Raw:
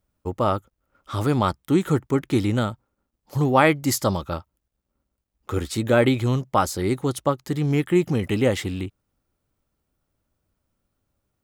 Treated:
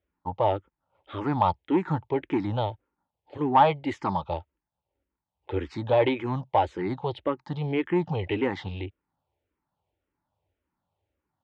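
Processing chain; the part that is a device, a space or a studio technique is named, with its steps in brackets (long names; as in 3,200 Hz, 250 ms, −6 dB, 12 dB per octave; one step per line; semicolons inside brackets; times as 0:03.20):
barber-pole phaser into a guitar amplifier (frequency shifter mixed with the dry sound −1.8 Hz; soft clipping −14 dBFS, distortion −17 dB; loudspeaker in its box 78–3,500 Hz, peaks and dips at 130 Hz −5 dB, 220 Hz −9 dB, 880 Hz +10 dB, 1,300 Hz −6 dB)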